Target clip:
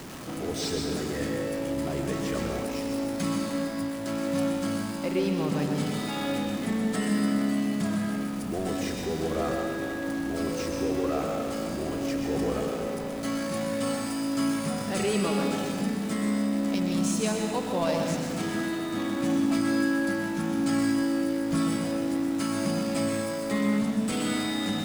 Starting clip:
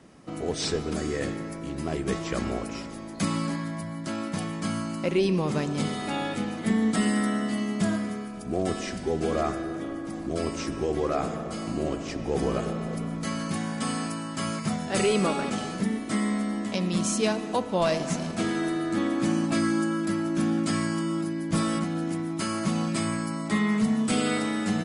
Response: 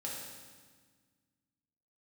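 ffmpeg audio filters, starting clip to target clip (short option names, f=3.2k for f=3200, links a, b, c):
-filter_complex "[0:a]aeval=exprs='val(0)+0.5*0.0316*sgn(val(0))':c=same,asplit=2[a][b];[1:a]atrim=start_sample=2205,adelay=125[c];[b][c]afir=irnorm=-1:irlink=0,volume=-3dB[d];[a][d]amix=inputs=2:normalize=0,volume=-6dB"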